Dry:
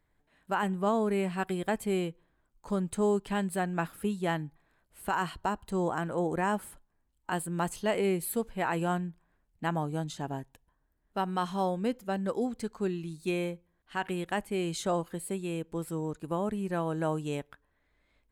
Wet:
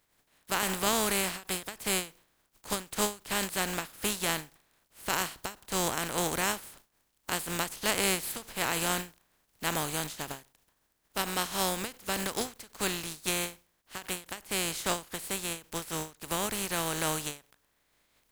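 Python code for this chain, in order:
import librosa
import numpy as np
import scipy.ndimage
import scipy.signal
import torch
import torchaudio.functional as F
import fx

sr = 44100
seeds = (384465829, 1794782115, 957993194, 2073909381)

y = fx.spec_flatten(x, sr, power=0.35)
y = fx.end_taper(y, sr, db_per_s=200.0)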